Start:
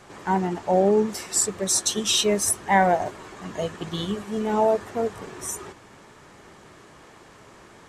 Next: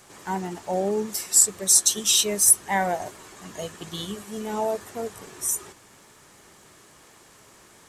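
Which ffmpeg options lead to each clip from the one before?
-af "aemphasis=mode=production:type=75fm,volume=-5.5dB"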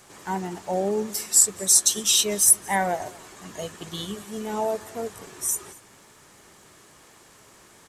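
-af "aecho=1:1:229:0.0708"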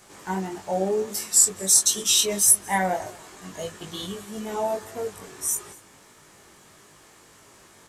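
-af "flanger=delay=19.5:depth=2.1:speed=1.6,volume=3dB"

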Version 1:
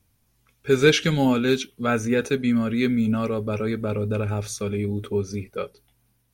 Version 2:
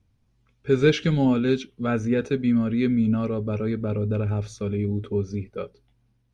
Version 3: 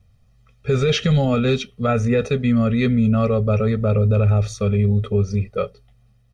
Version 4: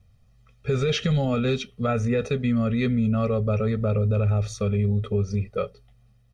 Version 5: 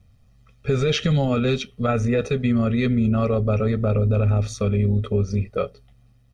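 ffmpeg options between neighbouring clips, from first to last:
-af "lowpass=5.3k,lowshelf=f=490:g=8.5,volume=-6.5dB"
-af "aecho=1:1:1.6:0.91,alimiter=limit=-16dB:level=0:latency=1:release=17,volume=6dB"
-af "acompressor=threshold=-23dB:ratio=1.5,volume=-2dB"
-af "tremolo=f=140:d=0.4,volume=4.5dB"

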